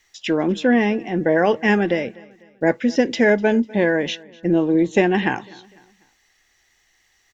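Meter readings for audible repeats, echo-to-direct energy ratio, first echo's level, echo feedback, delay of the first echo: 2, -22.5 dB, -23.5 dB, 42%, 249 ms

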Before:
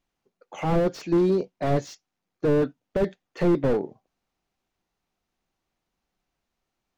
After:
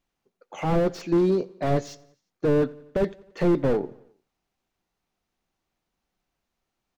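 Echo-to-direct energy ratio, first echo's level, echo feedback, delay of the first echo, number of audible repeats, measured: -21.5 dB, -23.0 dB, 56%, 88 ms, 3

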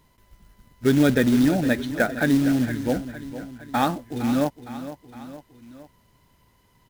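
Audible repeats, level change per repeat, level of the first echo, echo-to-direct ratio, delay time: 3, -5.0 dB, -13.0 dB, -11.5 dB, 461 ms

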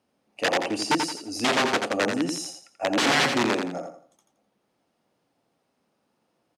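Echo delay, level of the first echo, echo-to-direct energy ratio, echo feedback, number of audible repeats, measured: 85 ms, -6.0 dB, -5.5 dB, 31%, 3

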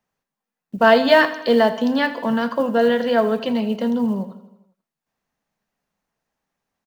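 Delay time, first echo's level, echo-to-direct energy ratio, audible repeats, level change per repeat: 81 ms, -15.0 dB, -13.0 dB, 5, -4.5 dB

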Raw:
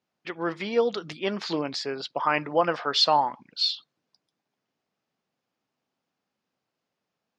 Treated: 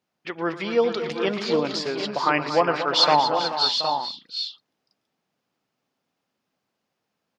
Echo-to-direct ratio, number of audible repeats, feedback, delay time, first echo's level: -3.5 dB, 6, no regular repeats, 116 ms, -15.5 dB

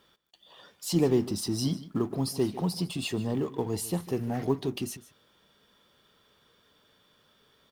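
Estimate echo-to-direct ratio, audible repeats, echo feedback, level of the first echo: -17.0 dB, 1, no regular repeats, -17.0 dB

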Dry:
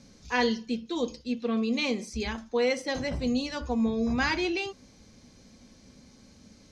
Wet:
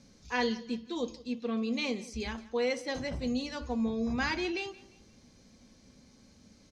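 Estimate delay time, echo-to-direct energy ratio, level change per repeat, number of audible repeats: 174 ms, -19.5 dB, -9.0 dB, 2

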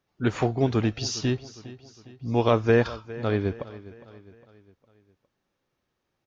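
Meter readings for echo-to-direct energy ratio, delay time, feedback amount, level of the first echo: -16.5 dB, 408 ms, 48%, -17.5 dB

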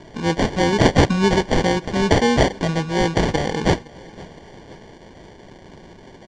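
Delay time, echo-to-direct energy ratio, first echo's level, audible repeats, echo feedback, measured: 514 ms, -20.5 dB, -22.5 dB, 3, 59%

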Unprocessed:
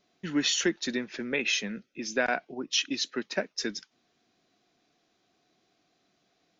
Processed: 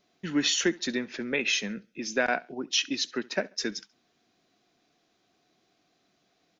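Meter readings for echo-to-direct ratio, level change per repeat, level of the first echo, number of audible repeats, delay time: -22.5 dB, -10.5 dB, -23.0 dB, 2, 69 ms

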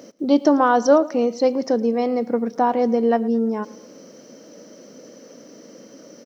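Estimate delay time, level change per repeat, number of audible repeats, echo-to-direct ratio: 111 ms, -6.5 dB, 3, -20.0 dB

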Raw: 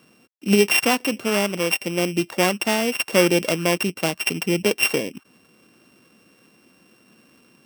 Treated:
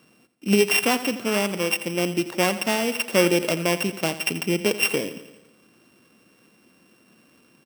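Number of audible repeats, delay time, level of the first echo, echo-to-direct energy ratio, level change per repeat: 5, 85 ms, -14.0 dB, -12.0 dB, -4.5 dB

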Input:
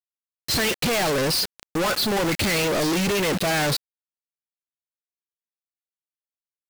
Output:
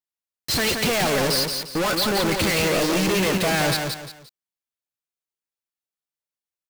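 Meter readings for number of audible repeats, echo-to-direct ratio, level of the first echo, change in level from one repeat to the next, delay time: 3, -4.5 dB, -5.0 dB, -10.0 dB, 175 ms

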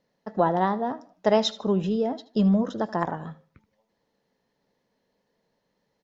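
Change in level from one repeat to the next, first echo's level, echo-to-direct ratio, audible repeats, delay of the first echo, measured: -11.0 dB, -18.0 dB, -17.5 dB, 2, 77 ms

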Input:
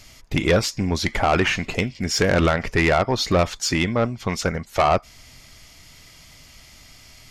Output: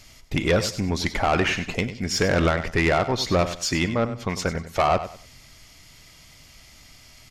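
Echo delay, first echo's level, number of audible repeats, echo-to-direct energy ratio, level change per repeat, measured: 97 ms, -12.0 dB, 3, -11.5 dB, -11.5 dB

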